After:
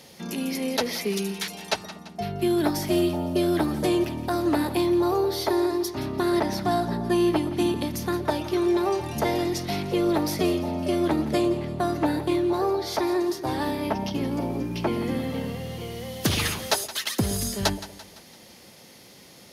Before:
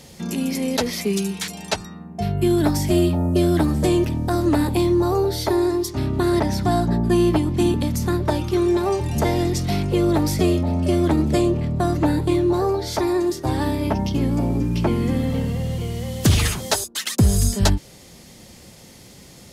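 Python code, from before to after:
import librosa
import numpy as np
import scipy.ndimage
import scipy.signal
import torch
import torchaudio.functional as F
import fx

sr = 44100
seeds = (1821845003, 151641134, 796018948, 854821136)

y = fx.highpass(x, sr, hz=330.0, slope=6)
y = fx.peak_eq(y, sr, hz=7700.0, db=-9.5, octaves=0.37)
y = fx.echo_split(y, sr, split_hz=660.0, low_ms=117, high_ms=170, feedback_pct=52, wet_db=-15.0)
y = y * librosa.db_to_amplitude(-1.5)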